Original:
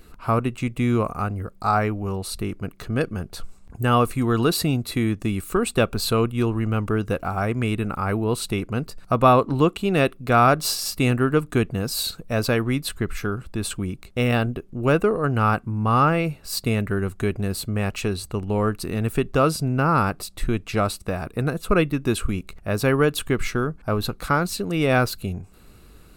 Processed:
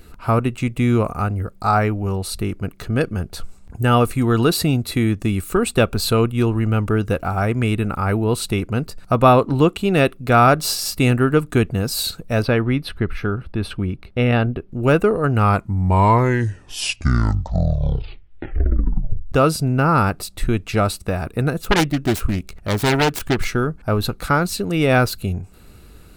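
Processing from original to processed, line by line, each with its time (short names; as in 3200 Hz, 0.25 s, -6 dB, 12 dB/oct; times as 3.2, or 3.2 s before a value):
12.42–14.72 running mean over 6 samples
15.28 tape stop 4.04 s
21.64–23.45 self-modulated delay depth 0.83 ms
whole clip: notch 1100 Hz, Q 13; de-esser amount 35%; bell 82 Hz +4 dB 0.77 oct; gain +3.5 dB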